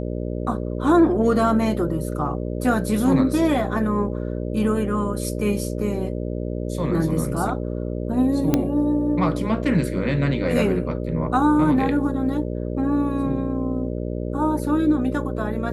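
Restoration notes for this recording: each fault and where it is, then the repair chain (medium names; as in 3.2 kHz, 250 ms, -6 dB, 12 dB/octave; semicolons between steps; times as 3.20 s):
buzz 60 Hz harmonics 10 -27 dBFS
8.54 s: pop -5 dBFS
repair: de-click; de-hum 60 Hz, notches 10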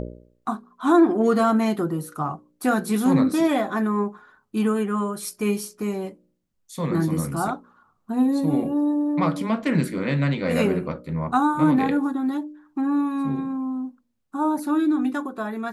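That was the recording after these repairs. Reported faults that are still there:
nothing left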